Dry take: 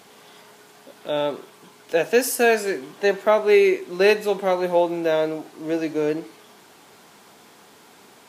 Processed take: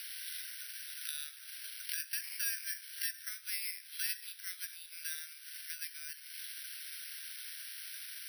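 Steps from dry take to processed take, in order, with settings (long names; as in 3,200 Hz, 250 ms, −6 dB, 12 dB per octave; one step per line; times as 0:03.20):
downward compressor 4 to 1, threshold −35 dBFS, peak gain reduction 19 dB
Chebyshev band-pass filter 1,500–5,200 Hz, order 5
bad sample-rate conversion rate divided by 6×, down none, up zero stuff
multiband upward and downward compressor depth 40%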